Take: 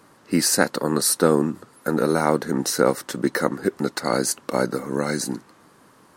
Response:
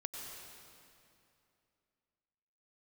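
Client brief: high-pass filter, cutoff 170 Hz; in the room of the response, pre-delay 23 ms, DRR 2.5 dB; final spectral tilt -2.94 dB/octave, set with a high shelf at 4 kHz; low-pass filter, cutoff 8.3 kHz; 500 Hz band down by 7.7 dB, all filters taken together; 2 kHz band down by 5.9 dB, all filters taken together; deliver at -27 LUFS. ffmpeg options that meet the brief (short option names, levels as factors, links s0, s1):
-filter_complex "[0:a]highpass=170,lowpass=8300,equalizer=f=500:t=o:g=-9,equalizer=f=2000:t=o:g=-8.5,highshelf=f=4000:g=3.5,asplit=2[s0][s1];[1:a]atrim=start_sample=2205,adelay=23[s2];[s1][s2]afir=irnorm=-1:irlink=0,volume=0.841[s3];[s0][s3]amix=inputs=2:normalize=0,volume=0.708"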